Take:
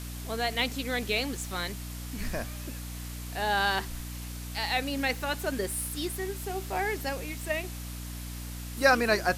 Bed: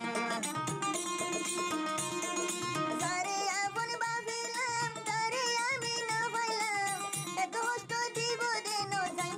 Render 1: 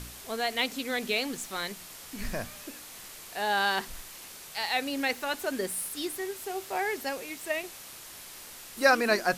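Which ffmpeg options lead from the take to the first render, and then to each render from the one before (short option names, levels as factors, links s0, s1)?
-af "bandreject=f=60:t=h:w=4,bandreject=f=120:t=h:w=4,bandreject=f=180:t=h:w=4,bandreject=f=240:t=h:w=4,bandreject=f=300:t=h:w=4"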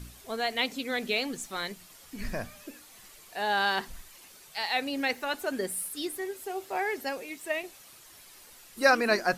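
-af "afftdn=nr=9:nf=-46"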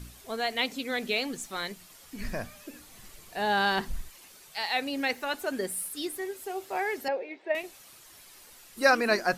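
-filter_complex "[0:a]asettb=1/sr,asplit=3[s0][s1][s2];[s0]atrim=end=2.734[s3];[s1]atrim=start=2.73:end=4.1,asetpts=PTS-STARTPTS,afade=t=in:d=0.004:c=qsin,afade=t=out:st=1.366:d=0.004:c=qsin,lowshelf=f=260:g=12[s4];[s2]atrim=start=4.096[s5];[s3][s4]acrossfade=d=0.004:c1=hsin:c2=qsin[s6];[s6][s5]acrossfade=d=0.004:c1=qsin:c2=hsin,asettb=1/sr,asplit=3[s7][s8][s9];[s7]atrim=end=7.084[s10];[s8]atrim=start=7.08:end=7.55,asetpts=PTS-STARTPTS,afade=t=in:d=0.004:c=qsin,afade=t=out:st=0.466:d=0.004:c=qsin,highpass=340,equalizer=f=380:t=q:w=4:g=7,equalizer=f=540:t=q:w=4:g=7,equalizer=f=810:t=q:w=4:g=6,equalizer=f=1200:t=q:w=4:g=-9,equalizer=f=3000:t=q:w=4:g=-8,lowpass=f=3300:w=0.5412,lowpass=f=3300:w=1.3066[s11];[s9]atrim=start=7.546[s12];[s10][s11]acrossfade=d=0.004:c1=hsin:c2=qsin[s13];[s13][s12]acrossfade=d=0.004:c1=qsin:c2=hsin"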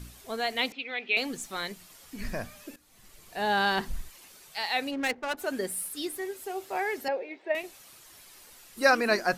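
-filter_complex "[0:a]asettb=1/sr,asplit=3[s0][s1][s2];[s0]atrim=end=0.724[s3];[s1]atrim=start=0.72:end=1.17,asetpts=PTS-STARTPTS,afade=t=in:d=0.004:c=qsin,afade=t=out:st=0.446:d=0.004:c=qsin,highpass=500,equalizer=f=580:t=q:w=4:g=-10,equalizer=f=1100:t=q:w=4:g=-8,equalizer=f=1600:t=q:w=4:g=-7,equalizer=f=2500:t=q:w=4:g=9,lowpass=f=3400:w=0.5412,lowpass=f=3400:w=1.3066[s4];[s2]atrim=start=1.166[s5];[s3][s4]acrossfade=d=0.004:c1=hsin:c2=qsin[s6];[s6][s5]acrossfade=d=0.004:c1=qsin:c2=hsin,asplit=3[s7][s8][s9];[s7]afade=t=out:st=4.9:d=0.02[s10];[s8]adynamicsmooth=sensitivity=5.5:basefreq=630,afade=t=in:st=4.9:d=0.02,afade=t=out:st=5.37:d=0.02[s11];[s9]afade=t=in:st=5.37:d=0.02[s12];[s10][s11][s12]amix=inputs=3:normalize=0,asplit=2[s13][s14];[s13]atrim=end=2.76,asetpts=PTS-STARTPTS,afade=t=out:st=2.756:d=0.004:c=hsin:silence=0.158489[s15];[s14]atrim=start=2.76,asetpts=PTS-STARTPTS,afade=t=in:d=0.69:silence=0.158489[s16];[s15][s16]concat=n=2:v=0:a=1"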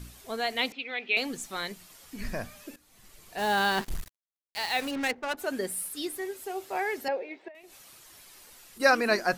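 -filter_complex "[0:a]asplit=3[s0][s1][s2];[s0]afade=t=out:st=3.37:d=0.02[s3];[s1]acrusher=bits=5:mix=0:aa=0.5,afade=t=in:st=3.37:d=0.02,afade=t=out:st=5.04:d=0.02[s4];[s2]afade=t=in:st=5.04:d=0.02[s5];[s3][s4][s5]amix=inputs=3:normalize=0,asettb=1/sr,asplit=3[s6][s7][s8];[s6]atrim=end=7.484[s9];[s7]atrim=start=7.48:end=8.8,asetpts=PTS-STARTPTS,afade=t=in:d=0.004:c=qsin,afade=t=out:st=1.316:d=0.004:c=qsin,acompressor=threshold=0.00501:ratio=16:attack=3.2:release=140:knee=1:detection=peak[s10];[s8]atrim=start=8.796[s11];[s9][s10]acrossfade=d=0.004:c1=hsin:c2=qsin[s12];[s12][s11]acrossfade=d=0.004:c1=qsin:c2=hsin"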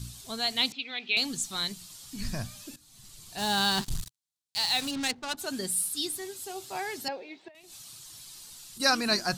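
-af "equalizer=f=125:t=o:w=1:g=10,equalizer=f=500:t=o:w=1:g=-9,equalizer=f=2000:t=o:w=1:g=-7,equalizer=f=4000:t=o:w=1:g=8,equalizer=f=8000:t=o:w=1:g=7"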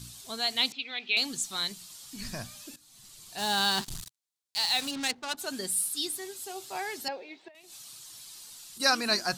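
-af "lowshelf=f=170:g=-11"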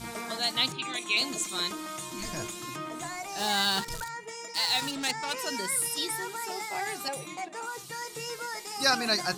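-filter_complex "[1:a]volume=0.631[s0];[0:a][s0]amix=inputs=2:normalize=0"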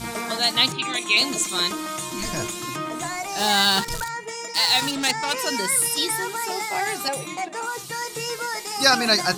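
-af "volume=2.51,alimiter=limit=0.708:level=0:latency=1"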